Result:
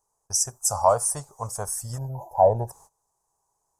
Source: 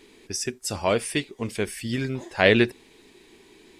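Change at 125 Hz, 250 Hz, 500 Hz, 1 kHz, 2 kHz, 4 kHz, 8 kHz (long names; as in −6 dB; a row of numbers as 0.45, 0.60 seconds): −0.5, −16.0, +0.5, +8.0, −23.0, −7.5, +8.5 decibels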